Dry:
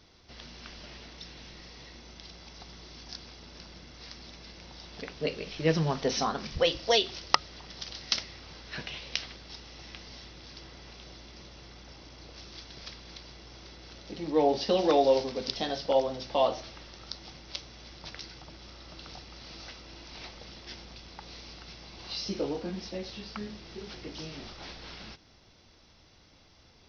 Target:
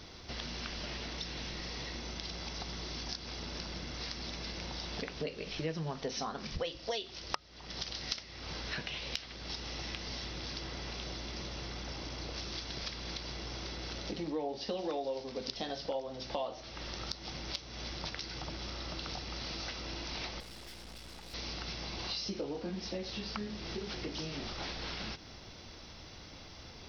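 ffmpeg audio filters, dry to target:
-filter_complex "[0:a]acompressor=threshold=-46dB:ratio=5,asettb=1/sr,asplit=3[a][b][c];[a]atrim=end=20.404[d];[b]atrim=start=20.4:end=21.34,asetpts=PTS-STARTPTS,afade=t=in:d=0.004:c=qsin,afade=t=out:st=0.936:d=0.004:c=qsin,aeval=exprs='(tanh(631*val(0)+0.75)-tanh(0.75))/631':c=same[e];[c]atrim=start=21.336[f];[d][e]acrossfade=d=0.004:c1=hsin:c2=qsin[g];[g][f]acrossfade=d=0.004:c1=qsin:c2=hsin,volume=9dB"

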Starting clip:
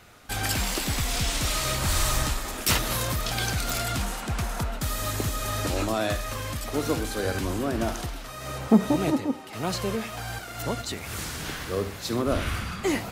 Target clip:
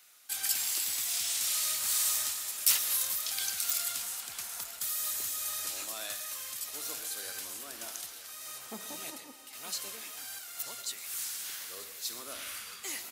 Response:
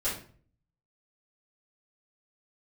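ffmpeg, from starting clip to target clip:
-filter_complex "[0:a]aderivative,aecho=1:1:935:0.2,asplit=2[a][b];[1:a]atrim=start_sample=2205,adelay=111[c];[b][c]afir=irnorm=-1:irlink=0,volume=-19.5dB[d];[a][d]amix=inputs=2:normalize=0"

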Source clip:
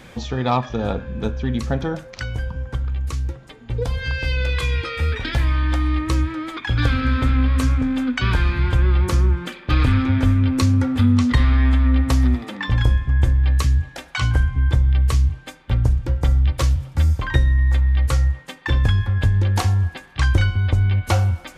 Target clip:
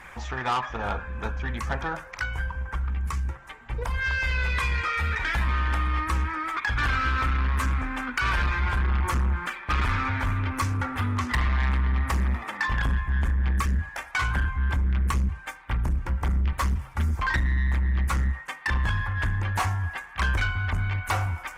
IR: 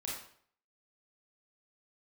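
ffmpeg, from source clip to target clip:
-af "equalizer=f=125:t=o:w=1:g=-11,equalizer=f=250:t=o:w=1:g=-11,equalizer=f=500:t=o:w=1:g=-8,equalizer=f=1k:t=o:w=1:g=8,equalizer=f=2k:t=o:w=1:g=6,equalizer=f=4k:t=o:w=1:g=-10,asoftclip=type=tanh:threshold=-20dB" -ar 48000 -c:a libopus -b:a 16k

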